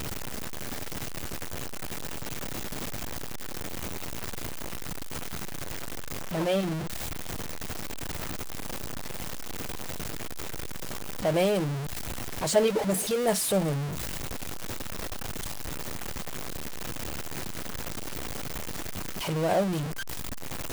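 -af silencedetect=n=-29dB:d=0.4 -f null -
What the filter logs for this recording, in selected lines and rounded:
silence_start: 0.00
silence_end: 6.34 | silence_duration: 6.34
silence_start: 6.78
silence_end: 11.25 | silence_duration: 4.47
silence_start: 11.76
silence_end: 12.43 | silence_duration: 0.67
silence_start: 13.85
silence_end: 19.29 | silence_duration: 5.44
silence_start: 19.83
silence_end: 20.73 | silence_duration: 0.90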